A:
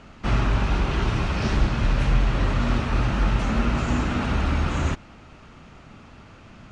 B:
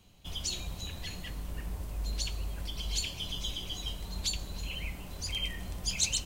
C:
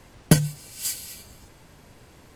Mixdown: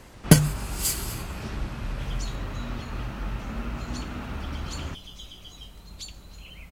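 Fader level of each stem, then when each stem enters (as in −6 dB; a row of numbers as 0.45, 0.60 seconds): −11.0, −7.0, +2.0 decibels; 0.00, 1.75, 0.00 seconds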